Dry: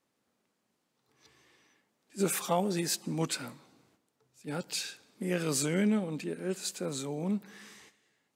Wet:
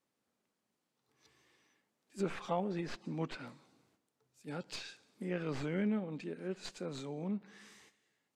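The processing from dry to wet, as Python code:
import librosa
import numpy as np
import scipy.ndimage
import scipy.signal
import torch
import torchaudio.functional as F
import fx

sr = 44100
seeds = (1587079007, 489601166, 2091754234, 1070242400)

y = fx.tracing_dist(x, sr, depth_ms=0.069)
y = fx.env_lowpass_down(y, sr, base_hz=2600.0, full_db=-28.5)
y = y * librosa.db_to_amplitude(-6.0)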